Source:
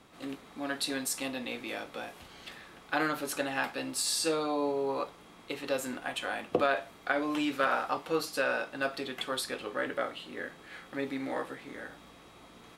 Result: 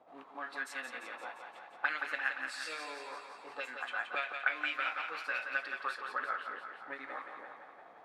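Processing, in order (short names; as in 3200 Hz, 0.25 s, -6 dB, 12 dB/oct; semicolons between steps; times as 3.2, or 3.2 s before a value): granular stretch 0.63×, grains 0.195 s; auto-wah 670–2300 Hz, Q 3.2, up, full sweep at -27.5 dBFS; thinning echo 0.173 s, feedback 62%, high-pass 350 Hz, level -6 dB; gain +5.5 dB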